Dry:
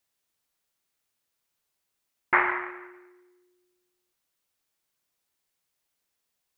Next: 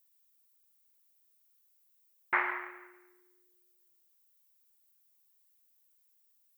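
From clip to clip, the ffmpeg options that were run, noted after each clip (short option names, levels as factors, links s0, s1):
-af "aemphasis=mode=production:type=bsi,volume=0.398"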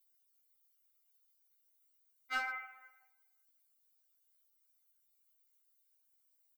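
-af "aecho=1:1:1.4:0.83,volume=13.3,asoftclip=hard,volume=0.075,afftfilt=real='re*3.46*eq(mod(b,12),0)':imag='im*3.46*eq(mod(b,12),0)':win_size=2048:overlap=0.75,volume=0.596"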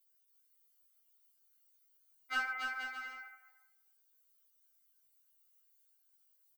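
-filter_complex "[0:a]asplit=2[s0][s1];[s1]adelay=20,volume=0.501[s2];[s0][s2]amix=inputs=2:normalize=0,asplit=2[s3][s4];[s4]aecho=0:1:280|476|613.2|709.2|776.5:0.631|0.398|0.251|0.158|0.1[s5];[s3][s5]amix=inputs=2:normalize=0"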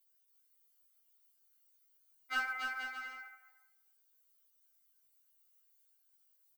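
-af "acrusher=bits=7:mode=log:mix=0:aa=0.000001"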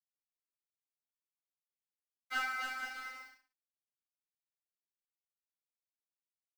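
-filter_complex "[0:a]aeval=exprs='sgn(val(0))*max(abs(val(0))-0.00282,0)':c=same,asplit=2[s0][s1];[s1]aecho=0:1:30|63|99.3|139.2|183.2:0.631|0.398|0.251|0.158|0.1[s2];[s0][s2]amix=inputs=2:normalize=0"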